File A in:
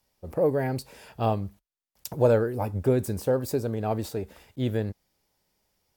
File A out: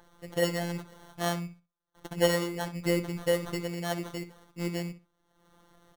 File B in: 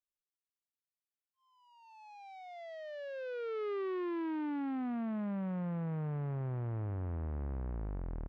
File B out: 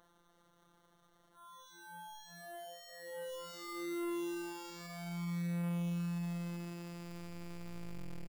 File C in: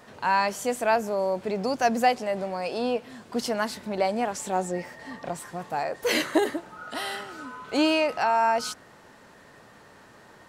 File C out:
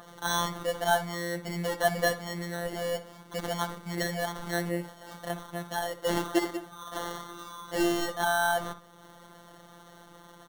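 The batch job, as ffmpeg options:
ffmpeg -i in.wav -filter_complex "[0:a]acrusher=samples=18:mix=1:aa=0.000001,acompressor=mode=upward:threshold=-42dB:ratio=2.5,afftfilt=real='hypot(re,im)*cos(PI*b)':imag='0':win_size=1024:overlap=0.75,asplit=2[link_01][link_02];[link_02]adelay=63,lowpass=frequency=4100:poles=1,volume=-12dB,asplit=2[link_03][link_04];[link_04]adelay=63,lowpass=frequency=4100:poles=1,volume=0.2,asplit=2[link_05][link_06];[link_06]adelay=63,lowpass=frequency=4100:poles=1,volume=0.2[link_07];[link_03][link_05][link_07]amix=inputs=3:normalize=0[link_08];[link_01][link_08]amix=inputs=2:normalize=0,adynamicequalizer=threshold=0.00891:dfrequency=2300:dqfactor=0.7:tfrequency=2300:tqfactor=0.7:attack=5:release=100:ratio=0.375:range=2:mode=cutabove:tftype=highshelf" out.wav

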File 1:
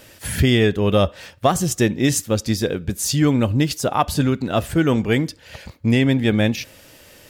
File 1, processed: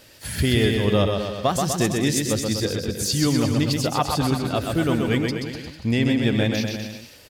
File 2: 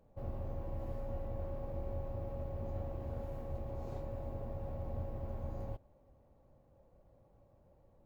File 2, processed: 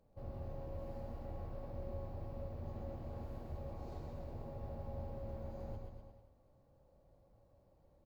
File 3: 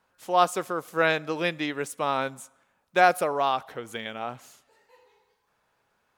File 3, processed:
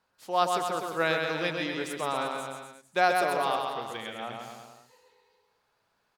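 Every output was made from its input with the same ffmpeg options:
ffmpeg -i in.wav -filter_complex "[0:a]equalizer=frequency=4500:width_type=o:width=0.51:gain=6.5,asplit=2[link_01][link_02];[link_02]aecho=0:1:130|247|352.3|447.1|532.4:0.631|0.398|0.251|0.158|0.1[link_03];[link_01][link_03]amix=inputs=2:normalize=0,volume=-5dB" out.wav

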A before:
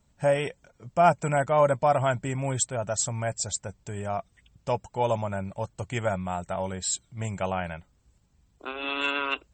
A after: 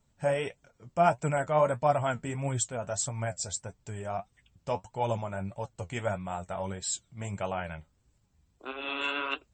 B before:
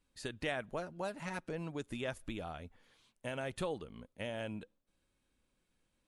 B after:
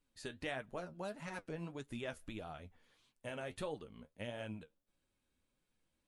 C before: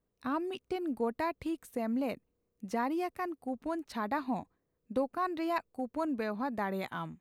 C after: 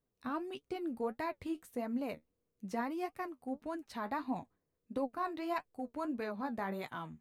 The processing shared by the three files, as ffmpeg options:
ffmpeg -i in.wav -af "flanger=delay=6.4:depth=7:regen=50:speed=1.6:shape=triangular" out.wav

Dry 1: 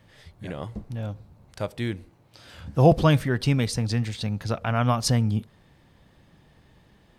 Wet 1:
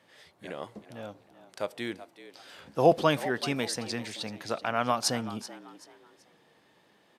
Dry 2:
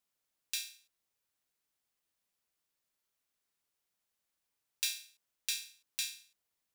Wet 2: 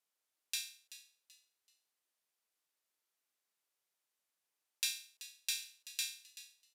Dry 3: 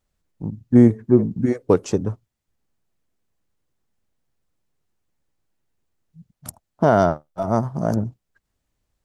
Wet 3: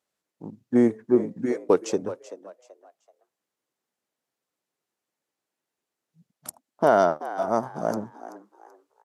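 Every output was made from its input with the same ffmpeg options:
ffmpeg -i in.wav -filter_complex "[0:a]highpass=320,asplit=4[link_01][link_02][link_03][link_04];[link_02]adelay=382,afreqshift=83,volume=-15dB[link_05];[link_03]adelay=764,afreqshift=166,volume=-25.2dB[link_06];[link_04]adelay=1146,afreqshift=249,volume=-35.3dB[link_07];[link_01][link_05][link_06][link_07]amix=inputs=4:normalize=0,aresample=32000,aresample=44100,volume=-1.5dB" out.wav

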